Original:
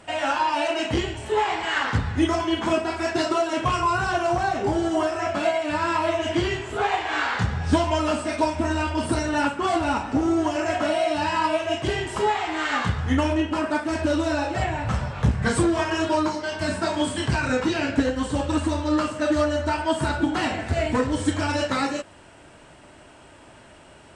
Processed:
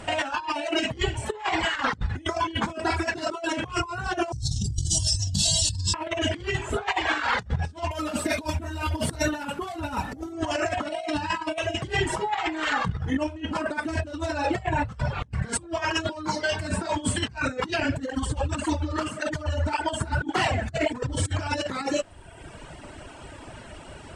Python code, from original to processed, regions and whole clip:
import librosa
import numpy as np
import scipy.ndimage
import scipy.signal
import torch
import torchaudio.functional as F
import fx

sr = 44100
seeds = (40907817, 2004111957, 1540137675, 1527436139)

y = fx.chain(x, sr, fx.cheby2_bandstop(low_hz=270.0, high_hz=2400.0, order=4, stop_db=40),
    fx.env_flatten(amount_pct=100), at=(4.32, 5.94))
y = fx.chain(y, sr, fx.cvsd(bps=64000),
    fx.peak_eq(hz=3800.0, db=4.0, octaves=0.21), at=(7.91, 10.33))
y = fx.chain(y, sr, fx.high_shelf(hz=3300.0, db=-4.0),
    fx.comb(ms=6.2, depth=0.48),
    fx.over_compress(threshold_db=-25.0, ratio=-0.5), at=(12.09, 13.28))
y = fx.chain(y, sr, fx.notch(hz=3900.0, q=24.0),
    fx.echo_single(ms=134, db=-15.5),
    fx.flanger_cancel(hz=1.8, depth_ms=7.3), at=(17.83, 21.15))
y = fx.dereverb_blind(y, sr, rt60_s=1.0)
y = fx.low_shelf(y, sr, hz=100.0, db=9.5)
y = fx.over_compress(y, sr, threshold_db=-29.0, ratio=-0.5)
y = F.gain(torch.from_numpy(y), 2.0).numpy()